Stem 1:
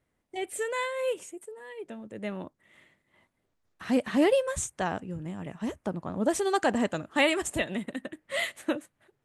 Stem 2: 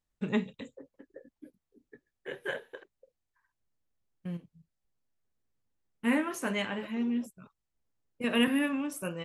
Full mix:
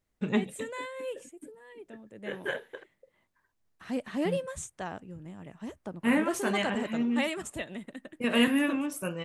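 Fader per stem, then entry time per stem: −7.5, +2.0 decibels; 0.00, 0.00 seconds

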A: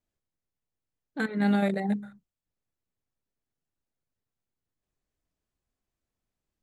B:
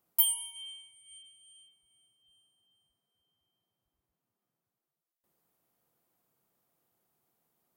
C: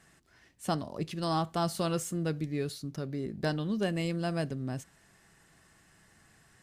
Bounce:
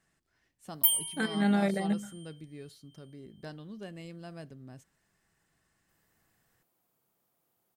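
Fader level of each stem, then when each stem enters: −2.0, +1.0, −13.0 decibels; 0.00, 0.65, 0.00 seconds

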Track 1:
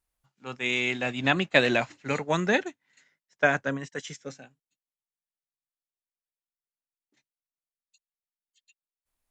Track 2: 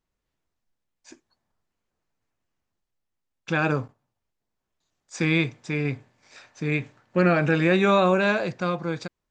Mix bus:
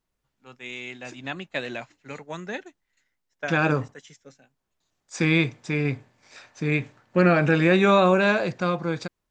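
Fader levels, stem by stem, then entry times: −9.5, +1.5 decibels; 0.00, 0.00 seconds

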